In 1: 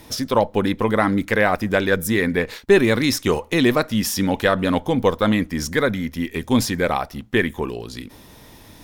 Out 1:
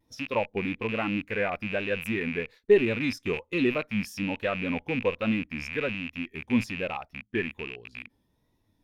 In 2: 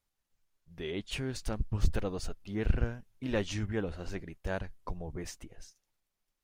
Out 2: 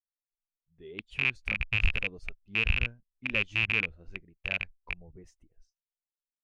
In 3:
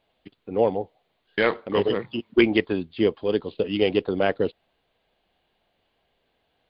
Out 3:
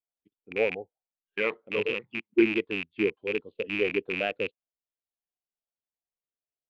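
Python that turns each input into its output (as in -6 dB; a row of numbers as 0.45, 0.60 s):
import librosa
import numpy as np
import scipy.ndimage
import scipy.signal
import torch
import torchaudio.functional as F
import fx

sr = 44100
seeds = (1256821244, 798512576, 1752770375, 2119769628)

y = fx.rattle_buzz(x, sr, strikes_db=-32.0, level_db=-7.0)
y = fx.vibrato(y, sr, rate_hz=1.2, depth_cents=62.0)
y = fx.spectral_expand(y, sr, expansion=1.5)
y = librosa.util.normalize(y) * 10.0 ** (-9 / 20.0)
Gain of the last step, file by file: -7.5, -5.0, -7.0 dB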